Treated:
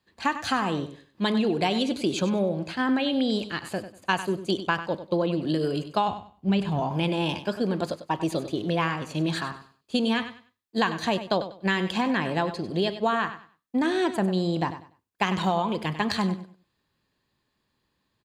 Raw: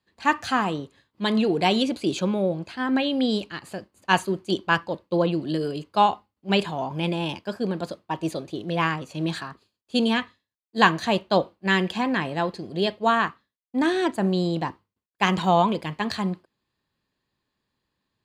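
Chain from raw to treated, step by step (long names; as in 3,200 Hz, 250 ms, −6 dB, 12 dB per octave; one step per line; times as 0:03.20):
0:06.08–0:06.80: bass and treble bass +13 dB, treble −2 dB
downward compressor 6 to 1, threshold −25 dBFS, peak gain reduction 13.5 dB
repeating echo 97 ms, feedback 24%, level −12 dB
level +3.5 dB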